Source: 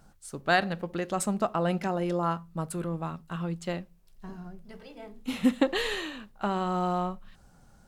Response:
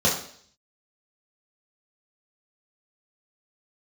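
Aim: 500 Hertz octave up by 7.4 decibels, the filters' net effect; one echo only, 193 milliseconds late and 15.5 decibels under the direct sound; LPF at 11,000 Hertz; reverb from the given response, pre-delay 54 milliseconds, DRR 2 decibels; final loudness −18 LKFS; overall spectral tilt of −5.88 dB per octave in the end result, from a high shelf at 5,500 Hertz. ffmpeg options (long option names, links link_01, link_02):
-filter_complex "[0:a]lowpass=11000,equalizer=frequency=500:width_type=o:gain=9,highshelf=frequency=5500:gain=6,aecho=1:1:193:0.168,asplit=2[link_01][link_02];[1:a]atrim=start_sample=2205,adelay=54[link_03];[link_02][link_03]afir=irnorm=-1:irlink=0,volume=-18dB[link_04];[link_01][link_04]amix=inputs=2:normalize=0,volume=3.5dB"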